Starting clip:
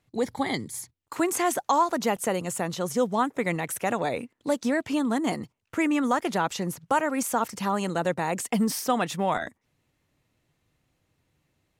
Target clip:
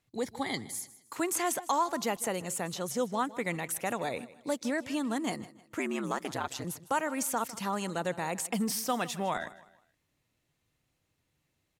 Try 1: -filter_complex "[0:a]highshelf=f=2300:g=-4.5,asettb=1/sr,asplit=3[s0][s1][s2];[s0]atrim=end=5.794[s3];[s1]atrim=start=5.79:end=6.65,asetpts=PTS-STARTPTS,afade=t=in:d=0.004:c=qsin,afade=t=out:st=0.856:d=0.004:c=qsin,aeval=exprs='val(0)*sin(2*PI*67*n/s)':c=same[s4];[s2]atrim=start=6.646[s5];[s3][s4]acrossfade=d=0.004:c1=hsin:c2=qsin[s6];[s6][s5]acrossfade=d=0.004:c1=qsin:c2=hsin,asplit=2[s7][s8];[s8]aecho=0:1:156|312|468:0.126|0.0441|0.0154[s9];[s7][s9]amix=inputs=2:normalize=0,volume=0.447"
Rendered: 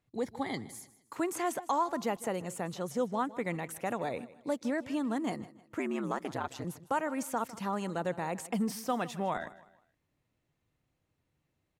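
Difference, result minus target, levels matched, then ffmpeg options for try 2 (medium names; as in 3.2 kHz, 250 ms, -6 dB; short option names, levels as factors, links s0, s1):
4 kHz band -5.5 dB
-filter_complex "[0:a]highshelf=f=2300:g=5.5,asettb=1/sr,asplit=3[s0][s1][s2];[s0]atrim=end=5.794[s3];[s1]atrim=start=5.79:end=6.65,asetpts=PTS-STARTPTS,afade=t=in:d=0.004:c=qsin,afade=t=out:st=0.856:d=0.004:c=qsin,aeval=exprs='val(0)*sin(2*PI*67*n/s)':c=same[s4];[s2]atrim=start=6.646[s5];[s3][s4]acrossfade=d=0.004:c1=hsin:c2=qsin[s6];[s6][s5]acrossfade=d=0.004:c1=qsin:c2=hsin,asplit=2[s7][s8];[s8]aecho=0:1:156|312|468:0.126|0.0441|0.0154[s9];[s7][s9]amix=inputs=2:normalize=0,volume=0.447"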